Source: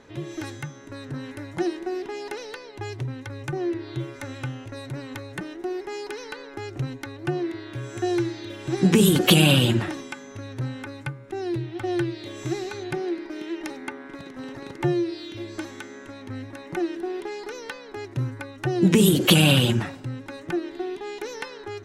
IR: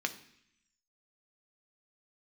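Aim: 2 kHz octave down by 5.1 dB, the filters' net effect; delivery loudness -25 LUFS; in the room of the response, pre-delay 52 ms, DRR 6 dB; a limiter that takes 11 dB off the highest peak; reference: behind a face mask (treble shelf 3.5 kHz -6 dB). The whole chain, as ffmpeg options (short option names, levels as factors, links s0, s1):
-filter_complex "[0:a]equalizer=f=2000:t=o:g=-5,alimiter=limit=0.188:level=0:latency=1,asplit=2[s0][s1];[1:a]atrim=start_sample=2205,adelay=52[s2];[s1][s2]afir=irnorm=-1:irlink=0,volume=0.299[s3];[s0][s3]amix=inputs=2:normalize=0,highshelf=f=3500:g=-6,volume=1.68"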